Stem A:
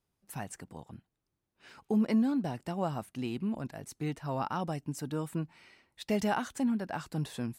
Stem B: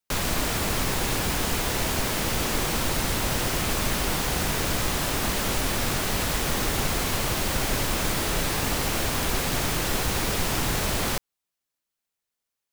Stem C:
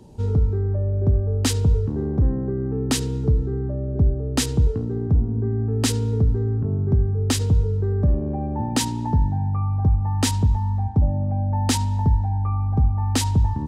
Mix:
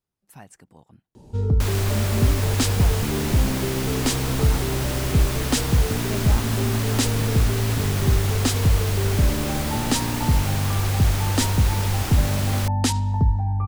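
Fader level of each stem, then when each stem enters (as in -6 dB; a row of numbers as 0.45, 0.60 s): -4.5, -3.0, -0.5 dB; 0.00, 1.50, 1.15 s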